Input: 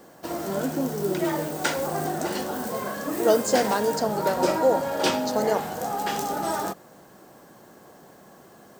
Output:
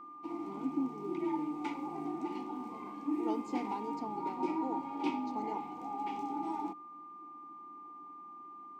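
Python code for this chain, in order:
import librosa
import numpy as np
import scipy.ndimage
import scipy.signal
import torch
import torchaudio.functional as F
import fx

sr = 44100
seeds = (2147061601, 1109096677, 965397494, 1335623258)

y = fx.vowel_filter(x, sr, vowel='u')
y = y + 10.0 ** (-47.0 / 20.0) * np.sin(2.0 * np.pi * 1200.0 * np.arange(len(y)) / sr)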